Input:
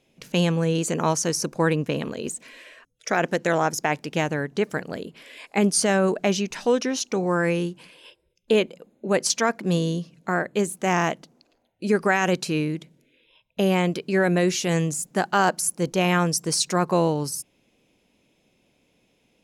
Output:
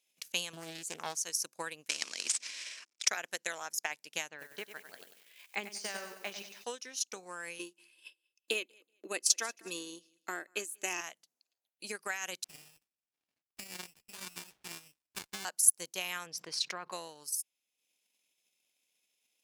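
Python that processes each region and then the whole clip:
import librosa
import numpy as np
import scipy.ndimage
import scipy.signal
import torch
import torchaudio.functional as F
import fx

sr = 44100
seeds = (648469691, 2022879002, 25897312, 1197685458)

y = fx.chain(x, sr, fx.low_shelf(hz=380.0, db=8.0),
    fx.doppler_dist(depth_ms=0.48), at=(0.53, 1.17))
y = fx.chain(y, sr, fx.cvsd(bps=64000),
    fx.cabinet(low_hz=170.0, low_slope=24, high_hz=7600.0, hz=(230.0, 320.0, 2300.0, 5300.0), db=(7, 10, 10, 9)),
    fx.spectral_comp(ratio=2.0), at=(1.89, 3.08))
y = fx.chain(y, sr, fx.air_absorb(metres=160.0),
    fx.echo_crushed(ms=96, feedback_pct=55, bits=8, wet_db=-5.0), at=(4.29, 6.64))
y = fx.chain(y, sr, fx.highpass(hz=200.0, slope=12),
    fx.small_body(hz=(320.0, 2600.0), ring_ms=45, db=14),
    fx.echo_feedback(ms=189, feedback_pct=21, wet_db=-19.5), at=(7.59, 11.01))
y = fx.chain(y, sr, fx.low_shelf(hz=200.0, db=-3.0),
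    fx.freq_invert(carrier_hz=2900),
    fx.running_max(window=65), at=(12.44, 15.45))
y = fx.chain(y, sr, fx.air_absorb(metres=320.0),
    fx.env_flatten(amount_pct=70), at=(16.26, 16.92))
y = fx.transient(y, sr, attack_db=9, sustain_db=-7)
y = np.diff(y, prepend=0.0)
y = F.gain(torch.from_numpy(y), -4.0).numpy()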